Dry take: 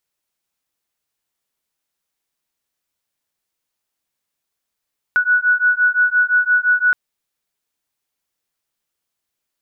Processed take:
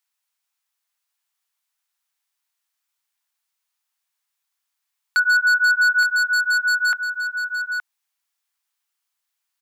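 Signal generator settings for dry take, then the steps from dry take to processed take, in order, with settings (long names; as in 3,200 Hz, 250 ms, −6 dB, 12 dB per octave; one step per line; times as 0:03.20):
two tones that beat 1,470 Hz, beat 5.8 Hz, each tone −15.5 dBFS 1.77 s
high-pass filter 820 Hz 24 dB per octave
wave folding −12 dBFS
single-tap delay 869 ms −9 dB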